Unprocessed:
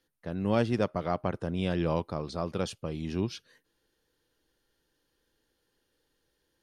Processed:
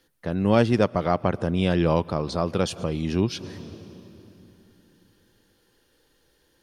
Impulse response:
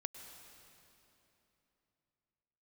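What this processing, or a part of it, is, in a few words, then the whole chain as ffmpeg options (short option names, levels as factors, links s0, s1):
ducked reverb: -filter_complex "[0:a]asplit=3[s0][s1][s2];[1:a]atrim=start_sample=2205[s3];[s1][s3]afir=irnorm=-1:irlink=0[s4];[s2]apad=whole_len=292359[s5];[s4][s5]sidechaincompress=threshold=0.00501:ratio=8:attack=20:release=113,volume=0.841[s6];[s0][s6]amix=inputs=2:normalize=0,volume=2.24"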